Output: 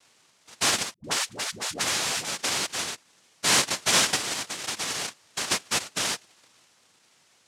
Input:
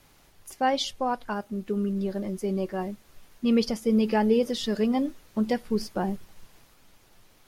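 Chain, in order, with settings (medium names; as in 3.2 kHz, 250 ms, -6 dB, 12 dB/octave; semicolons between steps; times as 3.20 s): 4.15–5.44 s: compression 5:1, threshold -29 dBFS, peak gain reduction 11 dB; noise-vocoded speech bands 1; 0.94–2.25 s: phase dispersion highs, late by 100 ms, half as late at 460 Hz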